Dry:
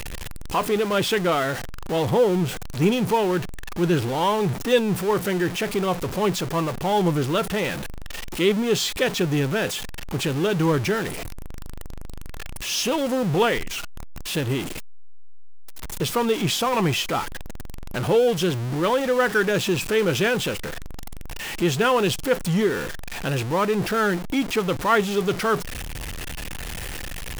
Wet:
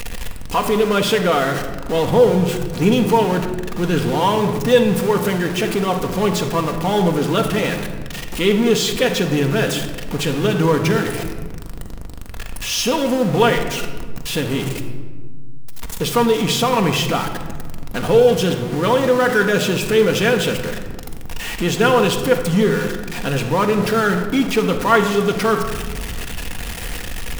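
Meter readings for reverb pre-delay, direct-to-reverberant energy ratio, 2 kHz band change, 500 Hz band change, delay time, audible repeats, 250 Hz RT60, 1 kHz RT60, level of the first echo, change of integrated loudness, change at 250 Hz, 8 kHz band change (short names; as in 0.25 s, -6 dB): 4 ms, 3.5 dB, +4.5 dB, +5.5 dB, none, none, 2.3 s, 1.4 s, none, +5.0 dB, +5.5 dB, +4.0 dB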